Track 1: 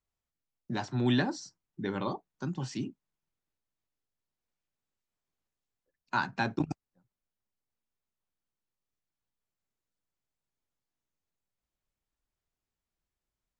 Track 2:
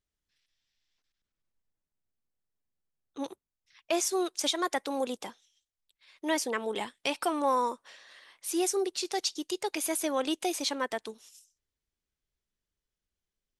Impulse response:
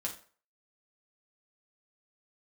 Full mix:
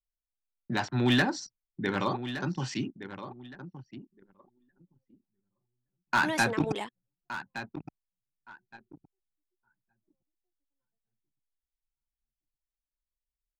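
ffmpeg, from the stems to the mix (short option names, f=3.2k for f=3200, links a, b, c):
-filter_complex "[0:a]equalizer=f=2.1k:w=0.66:g=7.5,asoftclip=type=hard:threshold=-20dB,volume=2dB,asplit=3[a][b][c];[b]volume=-12dB[d];[1:a]alimiter=limit=-24dB:level=0:latency=1:release=208,volume=1dB[e];[c]apad=whole_len=599358[f];[e][f]sidechaingate=range=-35dB:threshold=-52dB:ratio=16:detection=peak[g];[d]aecho=0:1:1167|2334|3501|4668|5835:1|0.32|0.102|0.0328|0.0105[h];[a][g][h]amix=inputs=3:normalize=0,anlmdn=0.1"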